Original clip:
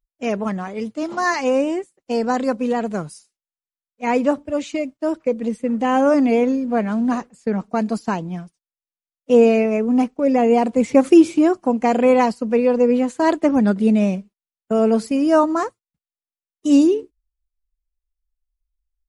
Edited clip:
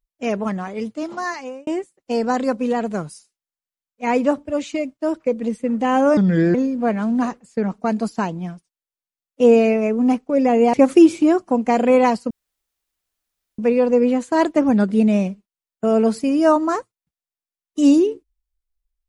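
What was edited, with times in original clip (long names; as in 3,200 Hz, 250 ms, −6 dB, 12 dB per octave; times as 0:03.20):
0:00.86–0:01.67: fade out
0:06.17–0:06.44: play speed 72%
0:10.63–0:10.89: remove
0:12.46: splice in room tone 1.28 s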